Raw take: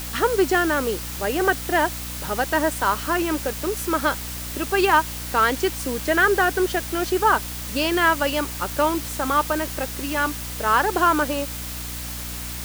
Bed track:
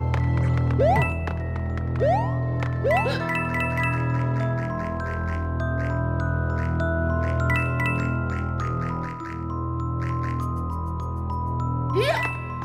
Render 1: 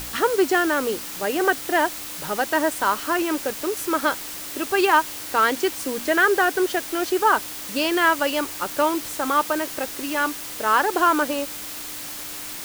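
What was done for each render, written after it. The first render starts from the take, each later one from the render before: de-hum 60 Hz, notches 4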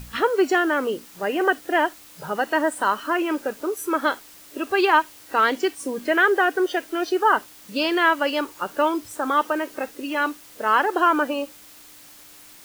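noise print and reduce 13 dB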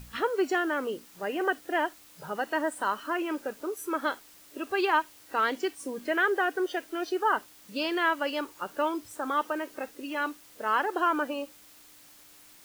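trim -7.5 dB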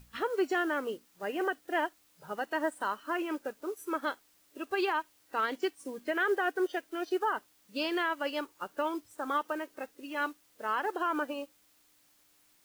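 peak limiter -20 dBFS, peak gain reduction 7 dB; upward expansion 1.5:1, over -49 dBFS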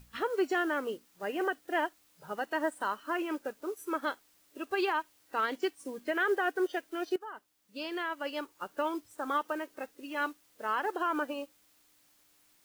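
7.16–8.80 s: fade in, from -16 dB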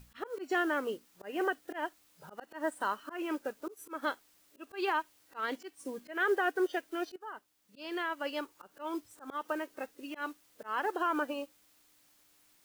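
slow attack 162 ms

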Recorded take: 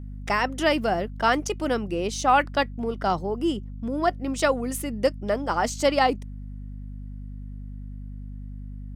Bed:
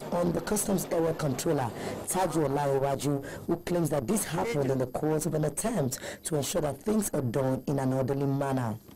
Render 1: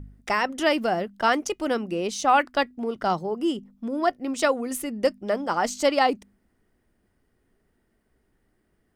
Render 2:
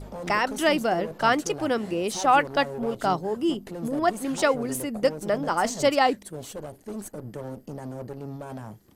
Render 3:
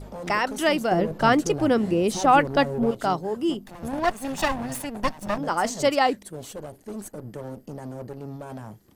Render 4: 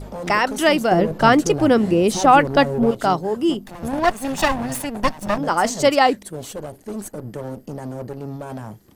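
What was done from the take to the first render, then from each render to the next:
de-hum 50 Hz, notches 5
add bed -8.5 dB
0.91–2.91 s: bass shelf 390 Hz +10 dB; 3.66–5.38 s: comb filter that takes the minimum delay 1.1 ms
trim +5.5 dB; peak limiter -2 dBFS, peak gain reduction 1.5 dB

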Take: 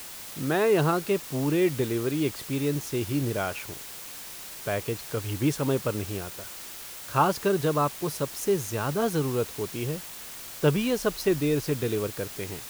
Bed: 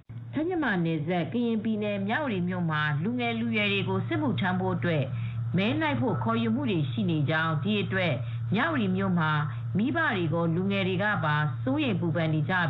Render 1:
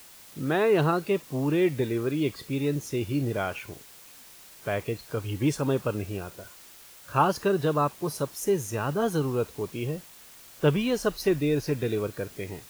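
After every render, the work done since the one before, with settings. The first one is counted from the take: noise print and reduce 9 dB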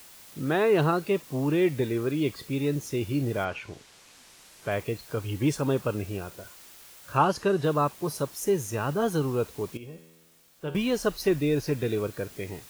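3.44–4.70 s: low-pass 5.2 kHz -> 12 kHz; 7.17–7.64 s: low-pass 10 kHz; 9.77–10.75 s: feedback comb 82 Hz, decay 1.3 s, mix 80%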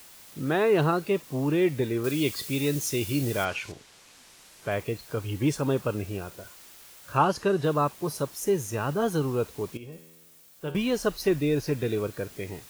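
2.04–3.72 s: treble shelf 2.6 kHz +11.5 dB; 9.92–10.72 s: treble shelf 7.4 kHz +7.5 dB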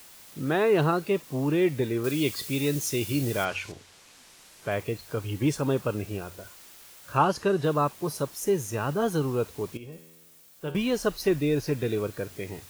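de-hum 46.12 Hz, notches 2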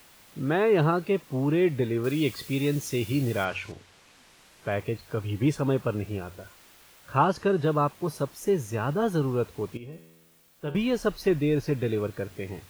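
tone controls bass +2 dB, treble -7 dB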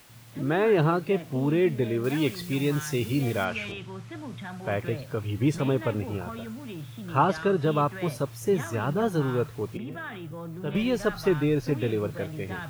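add bed -11.5 dB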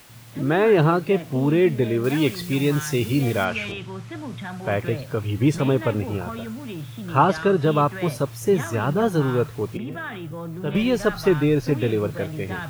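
trim +5 dB

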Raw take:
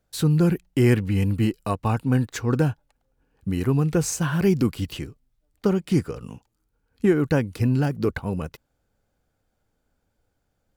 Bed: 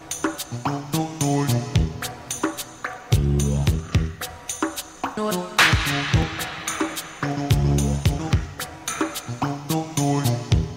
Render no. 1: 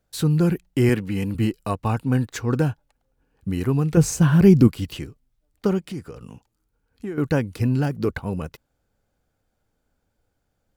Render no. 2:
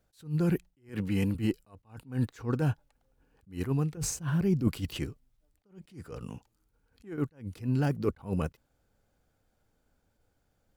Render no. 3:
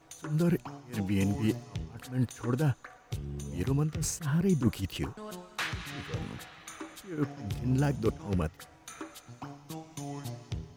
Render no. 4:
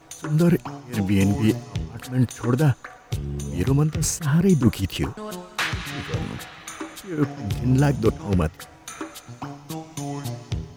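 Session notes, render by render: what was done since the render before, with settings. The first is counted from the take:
0.89–1.35 s: high-pass 140 Hz; 3.97–4.68 s: bass shelf 380 Hz +10 dB; 5.79–7.18 s: compression 2:1, threshold -37 dBFS
reverse; compression 6:1, threshold -24 dBFS, peak gain reduction 15 dB; reverse; attacks held to a fixed rise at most 200 dB/s
add bed -18.5 dB
trim +9 dB

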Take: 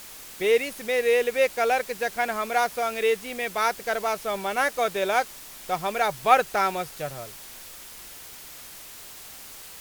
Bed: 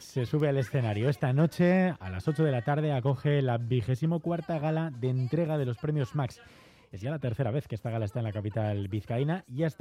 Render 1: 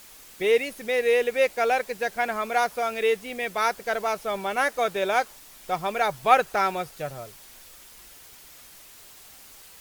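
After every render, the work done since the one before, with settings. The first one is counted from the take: noise reduction 6 dB, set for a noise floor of -43 dBFS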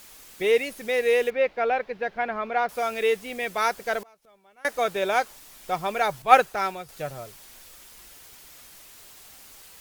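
1.30–2.69 s: distance through air 300 m; 4.01–4.65 s: inverted gate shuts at -30 dBFS, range -29 dB; 6.22–6.89 s: three bands expanded up and down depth 100%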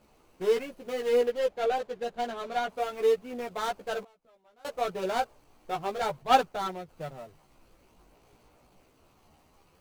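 median filter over 25 samples; chorus voices 2, 0.3 Hz, delay 14 ms, depth 2.9 ms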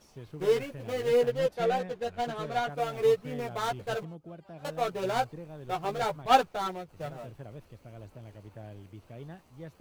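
add bed -15.5 dB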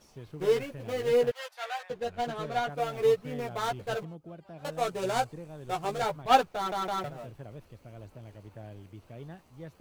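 1.31–1.90 s: high-pass 880 Hz 24 dB/octave; 4.72–6.02 s: peaking EQ 8.2 kHz +7 dB 1 oct; 6.56 s: stutter in place 0.16 s, 3 plays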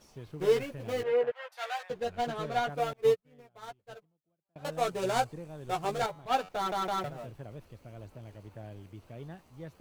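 1.03–1.52 s: three-band isolator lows -16 dB, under 410 Hz, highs -24 dB, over 2.6 kHz; 2.93–4.56 s: upward expansion 2.5:1, over -45 dBFS; 6.06–6.49 s: feedback comb 93 Hz, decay 1.3 s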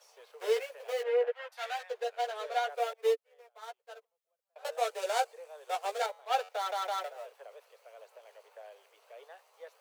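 dynamic bell 1.1 kHz, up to -5 dB, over -47 dBFS, Q 2.6; steep high-pass 450 Hz 72 dB/octave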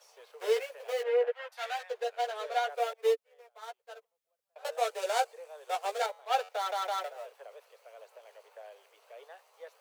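trim +1 dB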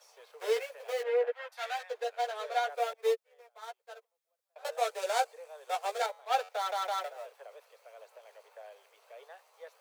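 high-pass 380 Hz; band-stop 2.9 kHz, Q 22

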